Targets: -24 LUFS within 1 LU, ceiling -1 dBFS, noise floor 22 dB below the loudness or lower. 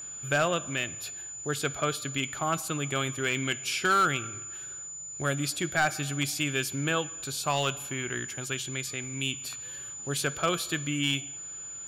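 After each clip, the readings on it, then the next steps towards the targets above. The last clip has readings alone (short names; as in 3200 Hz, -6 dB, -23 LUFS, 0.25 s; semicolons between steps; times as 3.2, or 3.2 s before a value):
clipped 0.3%; flat tops at -18.5 dBFS; steady tone 7000 Hz; tone level -38 dBFS; loudness -30.0 LUFS; peak -18.5 dBFS; loudness target -24.0 LUFS
-> clip repair -18.5 dBFS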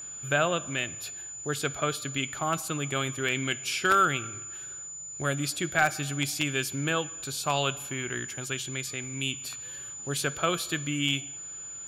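clipped 0.0%; steady tone 7000 Hz; tone level -38 dBFS
-> notch 7000 Hz, Q 30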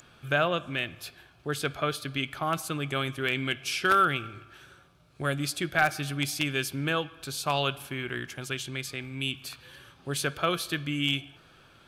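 steady tone none; loudness -29.5 LUFS; peak -9.5 dBFS; loudness target -24.0 LUFS
-> gain +5.5 dB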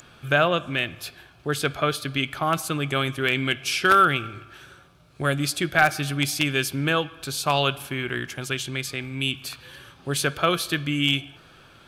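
loudness -24.0 LUFS; peak -4.0 dBFS; noise floor -52 dBFS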